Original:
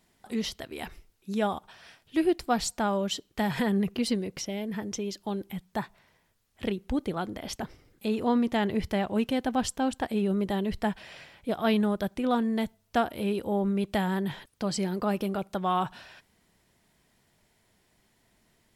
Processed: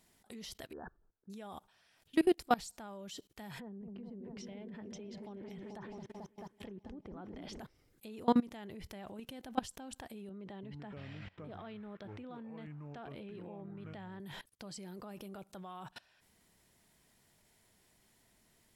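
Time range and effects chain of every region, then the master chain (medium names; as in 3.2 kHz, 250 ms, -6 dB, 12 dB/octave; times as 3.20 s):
0.73–1.30 s: brick-wall FIR low-pass 1.8 kHz + bass shelf 230 Hz -3.5 dB
3.59–7.59 s: low-pass that closes with the level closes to 770 Hz, closed at -24.5 dBFS + delay with an opening low-pass 219 ms, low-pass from 400 Hz, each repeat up 1 oct, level -6 dB
10.29–14.20 s: compression 1.5:1, threshold -40 dBFS + band-pass 100–3200 Hz + ever faster or slower copies 337 ms, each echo -6 st, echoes 2, each echo -6 dB
whole clip: peaking EQ 11 kHz +6 dB 1.7 oct; level held to a coarse grid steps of 23 dB; trim -1 dB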